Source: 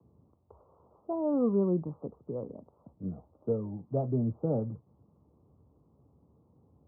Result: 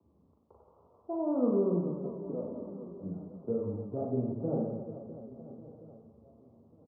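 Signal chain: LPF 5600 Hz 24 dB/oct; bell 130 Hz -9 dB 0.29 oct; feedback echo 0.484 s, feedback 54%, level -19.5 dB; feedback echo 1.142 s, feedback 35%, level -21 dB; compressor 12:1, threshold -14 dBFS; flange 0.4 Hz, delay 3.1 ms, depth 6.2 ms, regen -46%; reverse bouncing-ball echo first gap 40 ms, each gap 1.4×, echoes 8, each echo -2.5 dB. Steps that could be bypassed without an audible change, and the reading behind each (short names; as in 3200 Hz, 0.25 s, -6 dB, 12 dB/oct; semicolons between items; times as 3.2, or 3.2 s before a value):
LPF 5600 Hz: input band ends at 850 Hz; compressor, threshold -14 dBFS: input peak -18.5 dBFS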